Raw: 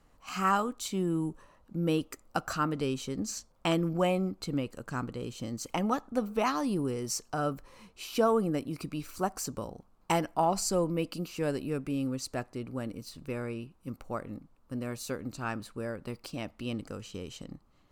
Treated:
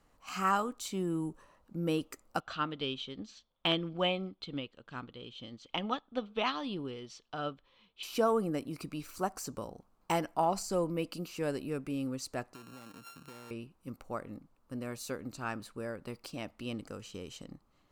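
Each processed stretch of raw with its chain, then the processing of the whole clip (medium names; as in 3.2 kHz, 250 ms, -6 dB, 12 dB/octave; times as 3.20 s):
2.40–8.03 s: resonant low-pass 3.4 kHz, resonance Q 7.6 + upward expansion, over -45 dBFS
12.54–13.51 s: sorted samples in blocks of 32 samples + high-pass 110 Hz + compression 12:1, threshold -42 dBFS
whole clip: de-esser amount 70%; bass shelf 200 Hz -4.5 dB; trim -2 dB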